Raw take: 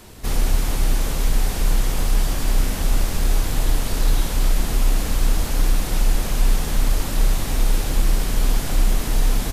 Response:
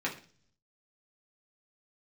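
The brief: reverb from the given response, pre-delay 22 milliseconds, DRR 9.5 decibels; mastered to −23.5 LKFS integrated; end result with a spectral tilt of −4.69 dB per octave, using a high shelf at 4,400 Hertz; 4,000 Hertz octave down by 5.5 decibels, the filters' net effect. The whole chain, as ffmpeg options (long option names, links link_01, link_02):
-filter_complex "[0:a]equalizer=frequency=4000:width_type=o:gain=-5.5,highshelf=frequency=4400:gain=-3,asplit=2[link_01][link_02];[1:a]atrim=start_sample=2205,adelay=22[link_03];[link_02][link_03]afir=irnorm=-1:irlink=0,volume=-16dB[link_04];[link_01][link_04]amix=inputs=2:normalize=0"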